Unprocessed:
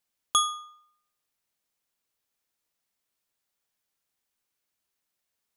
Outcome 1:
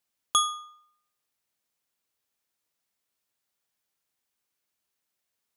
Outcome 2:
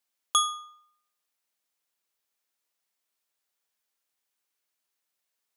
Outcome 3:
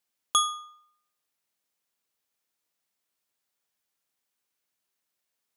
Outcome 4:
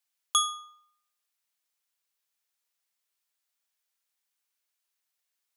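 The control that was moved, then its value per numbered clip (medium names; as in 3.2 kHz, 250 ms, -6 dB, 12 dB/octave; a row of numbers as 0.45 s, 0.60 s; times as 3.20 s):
high-pass, cutoff frequency: 42 Hz, 390 Hz, 130 Hz, 1.2 kHz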